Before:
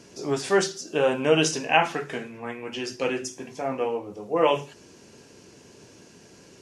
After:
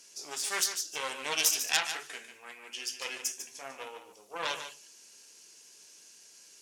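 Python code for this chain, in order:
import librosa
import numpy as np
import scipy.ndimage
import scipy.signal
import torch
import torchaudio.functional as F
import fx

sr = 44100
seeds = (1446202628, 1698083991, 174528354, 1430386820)

y = fx.cheby_harmonics(x, sr, harmonics=(4, 5, 8), levels_db=(-6, -17, -27), full_scale_db=-5.0)
y = np.diff(y, prepend=0.0)
y = y + 10.0 ** (-9.5 / 20.0) * np.pad(y, (int(147 * sr / 1000.0), 0))[:len(y)]
y = y * librosa.db_to_amplitude(-1.5)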